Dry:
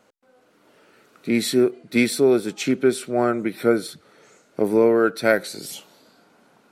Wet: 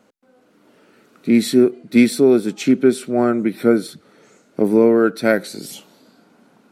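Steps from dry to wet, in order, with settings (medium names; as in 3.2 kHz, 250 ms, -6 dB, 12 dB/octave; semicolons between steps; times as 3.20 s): peaking EQ 230 Hz +8 dB 1.3 oct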